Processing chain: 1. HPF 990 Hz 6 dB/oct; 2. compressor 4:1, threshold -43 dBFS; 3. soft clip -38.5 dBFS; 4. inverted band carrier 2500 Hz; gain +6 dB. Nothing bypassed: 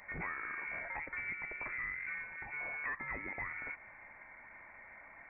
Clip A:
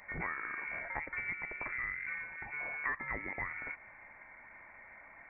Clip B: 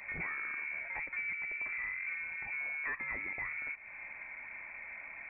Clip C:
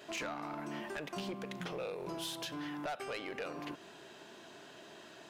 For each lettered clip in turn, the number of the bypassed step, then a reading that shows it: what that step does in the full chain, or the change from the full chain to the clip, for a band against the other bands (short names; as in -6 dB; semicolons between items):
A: 3, distortion -14 dB; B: 1, loudness change +2.0 LU; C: 4, 2 kHz band -17.0 dB